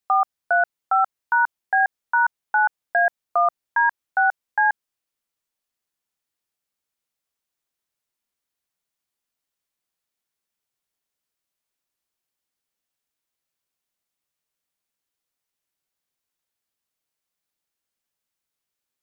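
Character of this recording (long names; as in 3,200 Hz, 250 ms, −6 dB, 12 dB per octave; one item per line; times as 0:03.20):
background noise floor −85 dBFS
spectral slope +1.5 dB per octave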